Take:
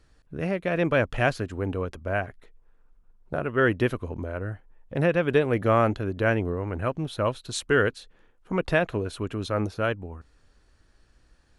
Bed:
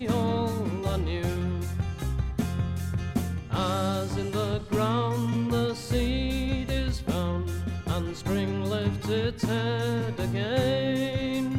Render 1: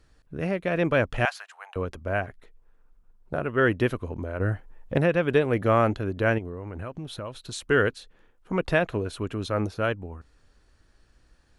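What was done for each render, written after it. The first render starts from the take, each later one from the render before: 1.25–1.76 s: elliptic high-pass 760 Hz, stop band 60 dB; 4.40–4.98 s: gain +7 dB; 6.38–7.68 s: compression, threshold -31 dBFS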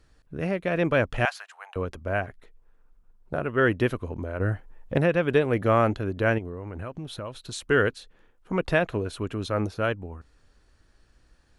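no audible change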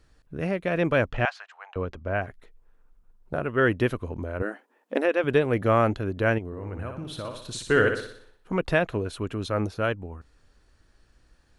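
1.09–2.21 s: distance through air 120 m; 4.42–5.24 s: brick-wall FIR high-pass 210 Hz; 6.46–8.57 s: flutter echo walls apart 10.4 m, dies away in 0.6 s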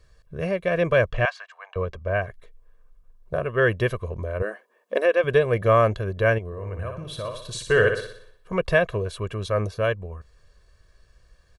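comb 1.8 ms, depth 78%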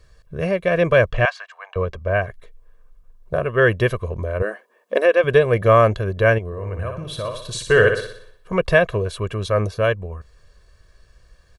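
trim +4.5 dB

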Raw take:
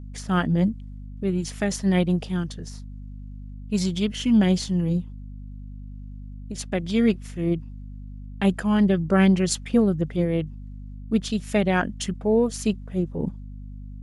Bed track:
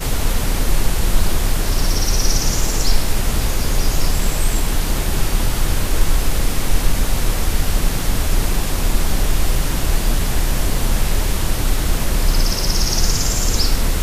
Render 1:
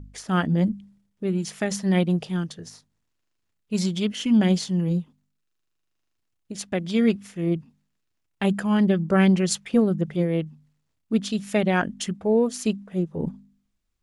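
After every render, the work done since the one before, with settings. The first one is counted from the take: de-hum 50 Hz, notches 5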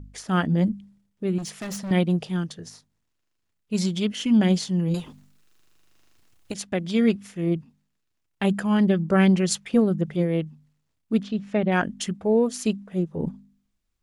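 1.38–1.91 s: hard clipper -29.5 dBFS; 4.94–6.54 s: spectrum-flattening compressor 2:1; 11.23–11.72 s: tape spacing loss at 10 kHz 27 dB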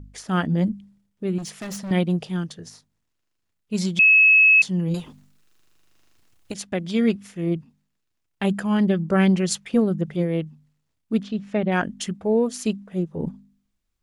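3.99–4.62 s: bleep 2.58 kHz -10.5 dBFS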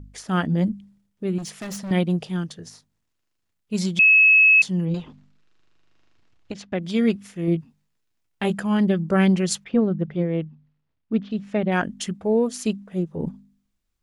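4.85–6.83 s: distance through air 140 m; 7.46–8.59 s: doubling 18 ms -7 dB; 9.64–11.31 s: distance through air 230 m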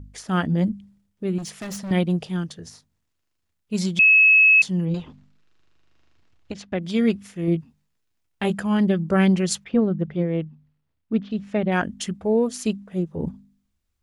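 peaking EQ 78 Hz +10.5 dB 0.28 oct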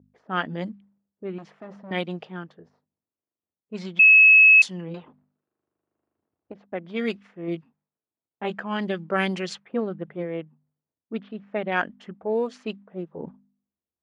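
level-controlled noise filter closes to 500 Hz, open at -13 dBFS; frequency weighting A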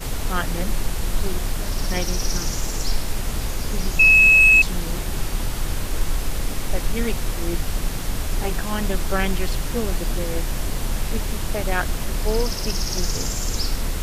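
add bed track -7 dB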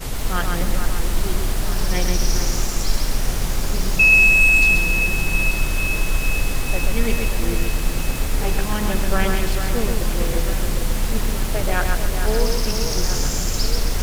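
echo whose repeats swap between lows and highs 445 ms, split 2.4 kHz, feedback 74%, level -8 dB; bit-crushed delay 134 ms, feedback 35%, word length 6-bit, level -3.5 dB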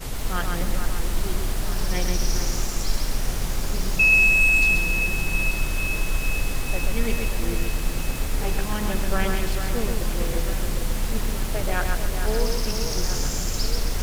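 trim -4 dB

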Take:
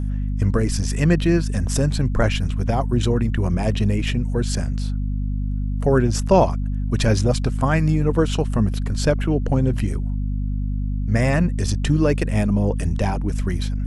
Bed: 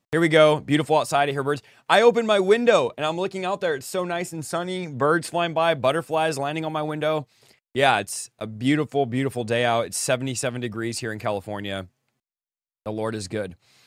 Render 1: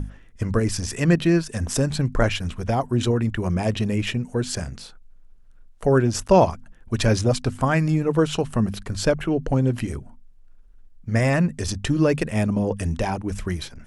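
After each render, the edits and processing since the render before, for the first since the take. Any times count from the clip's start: hum notches 50/100/150/200/250 Hz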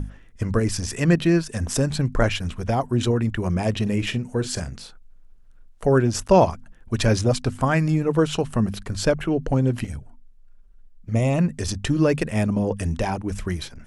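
3.82–4.61 s: doubling 44 ms -13.5 dB; 9.84–11.39 s: touch-sensitive flanger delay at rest 6.1 ms, full sweep at -19.5 dBFS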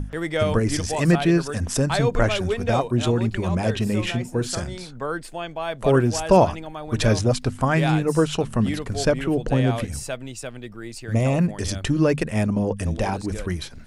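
add bed -8 dB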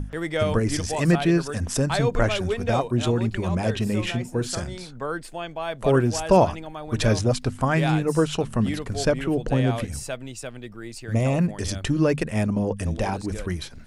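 trim -1.5 dB

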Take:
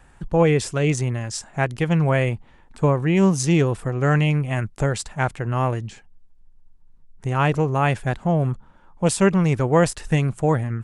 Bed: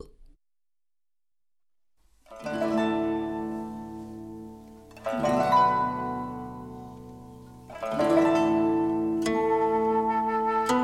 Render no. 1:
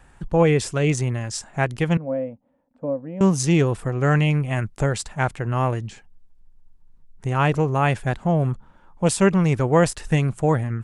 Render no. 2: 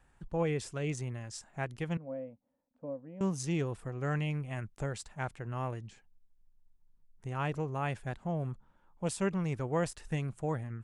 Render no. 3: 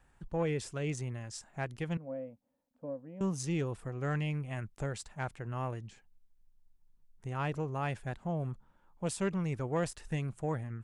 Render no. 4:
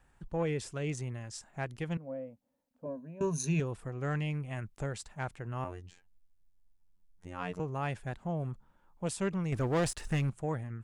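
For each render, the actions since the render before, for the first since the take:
1.97–3.21 s: two resonant band-passes 380 Hz, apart 1 oct
trim -14.5 dB
saturation -21.5 dBFS, distortion -24 dB
2.85–3.60 s: rippled EQ curve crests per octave 1.5, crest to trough 15 dB; 5.64–7.60 s: robot voice 89.6 Hz; 9.52–10.30 s: waveshaping leveller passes 2

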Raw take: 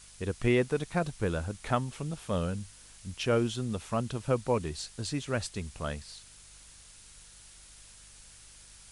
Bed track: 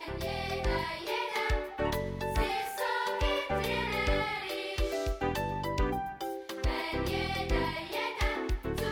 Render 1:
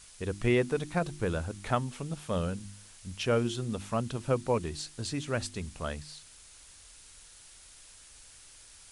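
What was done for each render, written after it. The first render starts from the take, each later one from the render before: de-hum 50 Hz, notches 7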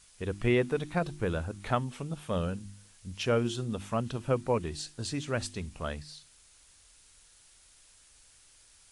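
noise print and reduce 6 dB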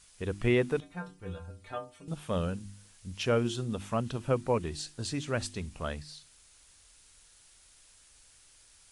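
0.80–2.08 s: inharmonic resonator 90 Hz, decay 0.44 s, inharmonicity 0.008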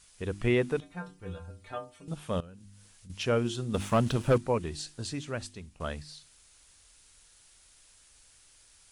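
2.40–3.10 s: compression 3:1, threshold -51 dBFS; 3.74–4.38 s: waveshaping leveller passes 2; 4.92–5.80 s: fade out linear, to -11.5 dB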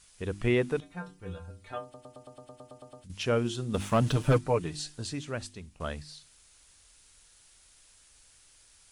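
1.83 s: stutter in place 0.11 s, 11 plays; 4.01–4.99 s: comb 6.7 ms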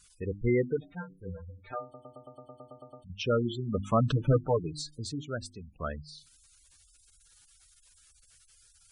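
spectral gate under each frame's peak -15 dB strong; peaking EQ 1.3 kHz +4 dB 0.29 oct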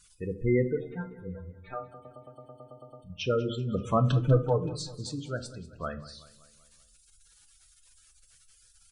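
feedback delay 191 ms, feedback 53%, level -17.5 dB; simulated room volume 370 m³, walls furnished, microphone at 0.69 m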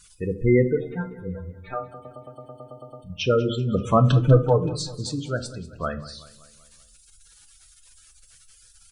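trim +7 dB

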